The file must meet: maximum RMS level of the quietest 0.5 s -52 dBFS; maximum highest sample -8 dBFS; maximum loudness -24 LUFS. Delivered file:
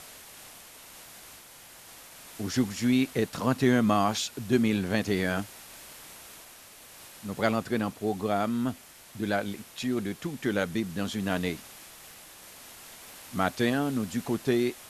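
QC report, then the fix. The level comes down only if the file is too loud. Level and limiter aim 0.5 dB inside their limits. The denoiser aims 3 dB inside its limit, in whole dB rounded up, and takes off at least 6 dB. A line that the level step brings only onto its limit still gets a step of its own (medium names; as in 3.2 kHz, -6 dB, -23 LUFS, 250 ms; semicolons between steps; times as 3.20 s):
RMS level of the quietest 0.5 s -50 dBFS: fail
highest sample -9.5 dBFS: pass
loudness -28.5 LUFS: pass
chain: noise reduction 6 dB, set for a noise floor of -50 dBFS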